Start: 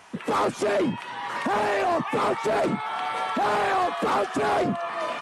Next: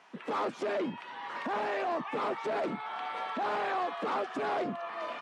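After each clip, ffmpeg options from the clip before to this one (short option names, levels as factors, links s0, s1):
-filter_complex "[0:a]acrossover=split=160 5500:gain=0.0794 1 0.178[s0][s1][s2];[s0][s1][s2]amix=inputs=3:normalize=0,volume=0.376"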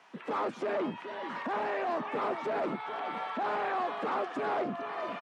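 -filter_complex "[0:a]acrossover=split=260|960|2700[s0][s1][s2][s3];[s3]alimiter=level_in=15.8:limit=0.0631:level=0:latency=1:release=98,volume=0.0631[s4];[s0][s1][s2][s4]amix=inputs=4:normalize=0,asplit=2[s5][s6];[s6]adelay=425.7,volume=0.316,highshelf=f=4000:g=-9.58[s7];[s5][s7]amix=inputs=2:normalize=0"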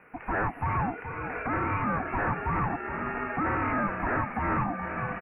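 -af "aeval=exprs='val(0)*sin(2*PI*500*n/s)':c=same,asuperstop=centerf=5500:order=20:qfactor=0.71,volume=2.24"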